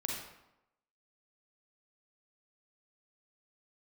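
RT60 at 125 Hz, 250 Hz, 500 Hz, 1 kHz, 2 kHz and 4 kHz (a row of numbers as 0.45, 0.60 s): 0.80, 0.90, 0.85, 0.90, 0.75, 0.60 s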